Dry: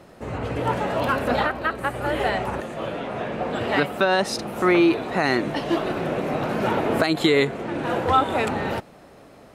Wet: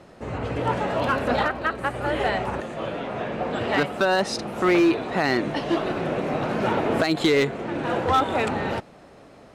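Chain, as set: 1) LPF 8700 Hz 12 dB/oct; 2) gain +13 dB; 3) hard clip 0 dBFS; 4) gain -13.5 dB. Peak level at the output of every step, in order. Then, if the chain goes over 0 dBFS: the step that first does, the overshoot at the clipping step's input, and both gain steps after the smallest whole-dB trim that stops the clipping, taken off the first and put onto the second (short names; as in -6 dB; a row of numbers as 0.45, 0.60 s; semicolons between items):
-6.0, +7.0, 0.0, -13.5 dBFS; step 2, 7.0 dB; step 2 +6 dB, step 4 -6.5 dB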